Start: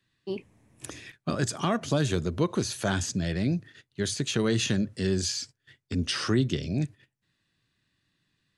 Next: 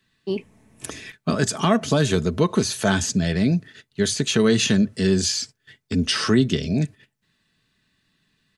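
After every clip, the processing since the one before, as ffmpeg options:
-af "aecho=1:1:4.6:0.41,volume=2.11"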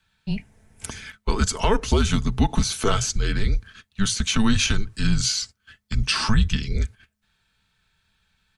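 -af "afreqshift=-210"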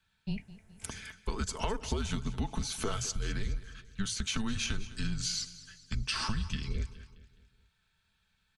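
-af "acompressor=threshold=0.0794:ratio=6,aecho=1:1:209|418|627|836:0.15|0.0718|0.0345|0.0165,volume=0.447"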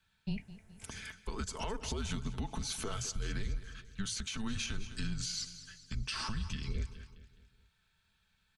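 -af "alimiter=level_in=1.5:limit=0.0631:level=0:latency=1:release=133,volume=0.668"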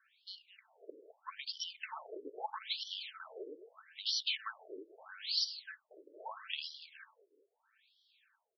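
-af "aeval=exprs='0.0447*(cos(1*acos(clip(val(0)/0.0447,-1,1)))-cos(1*PI/2))+0.00224*(cos(6*acos(clip(val(0)/0.0447,-1,1)))-cos(6*PI/2))':c=same,afftfilt=real='re*between(b*sr/1024,410*pow(4200/410,0.5+0.5*sin(2*PI*0.78*pts/sr))/1.41,410*pow(4200/410,0.5+0.5*sin(2*PI*0.78*pts/sr))*1.41)':imag='im*between(b*sr/1024,410*pow(4200/410,0.5+0.5*sin(2*PI*0.78*pts/sr))/1.41,410*pow(4200/410,0.5+0.5*sin(2*PI*0.78*pts/sr))*1.41)':win_size=1024:overlap=0.75,volume=2.51"

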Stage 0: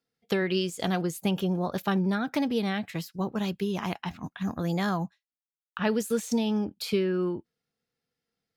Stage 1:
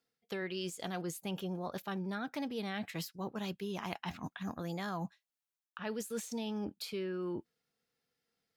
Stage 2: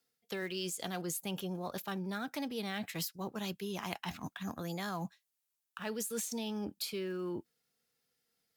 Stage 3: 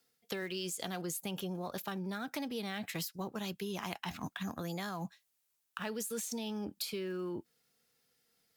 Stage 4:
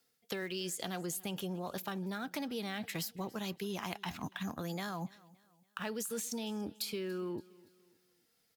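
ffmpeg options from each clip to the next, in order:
-af "lowshelf=f=270:g=-6,areverse,acompressor=threshold=0.0126:ratio=6,areverse,volume=1.19"
-filter_complex "[0:a]aemphasis=mode=production:type=cd,acrossover=split=340|1100|2900[s0][s1][s2][s3];[s2]acrusher=bits=3:mode=log:mix=0:aa=0.000001[s4];[s0][s1][s4][s3]amix=inputs=4:normalize=0"
-af "acompressor=threshold=0.00891:ratio=6,volume=1.88"
-af "aecho=1:1:285|570|855:0.075|0.03|0.012"

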